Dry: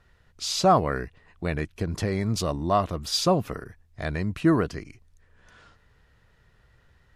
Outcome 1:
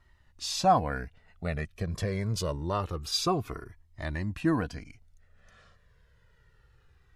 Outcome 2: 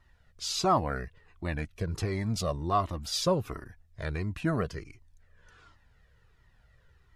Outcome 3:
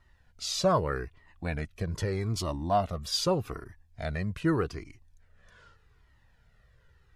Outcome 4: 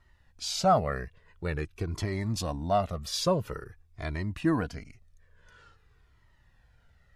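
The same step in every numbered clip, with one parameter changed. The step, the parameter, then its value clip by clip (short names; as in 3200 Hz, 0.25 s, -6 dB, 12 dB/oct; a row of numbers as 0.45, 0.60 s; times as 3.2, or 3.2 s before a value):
cascading flanger, rate: 0.26, 1.4, 0.82, 0.48 Hz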